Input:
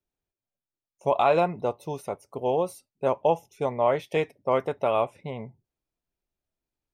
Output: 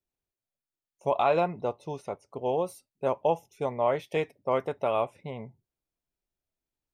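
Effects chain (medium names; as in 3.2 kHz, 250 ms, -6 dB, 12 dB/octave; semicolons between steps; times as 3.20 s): 1.17–2.45 s: low-pass 7.1 kHz 12 dB/octave; trim -3 dB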